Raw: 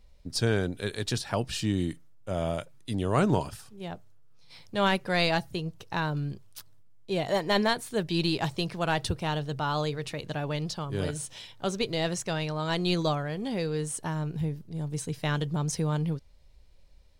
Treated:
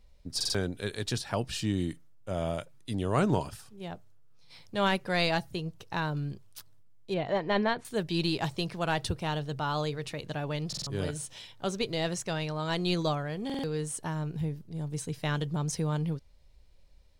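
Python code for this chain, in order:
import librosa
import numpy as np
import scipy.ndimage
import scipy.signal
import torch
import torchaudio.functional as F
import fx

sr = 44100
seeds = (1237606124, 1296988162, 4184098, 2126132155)

y = fx.lowpass(x, sr, hz=2800.0, slope=12, at=(7.14, 7.85))
y = fx.buffer_glitch(y, sr, at_s=(0.36, 10.68, 13.45), block=2048, repeats=3)
y = F.gain(torch.from_numpy(y), -2.0).numpy()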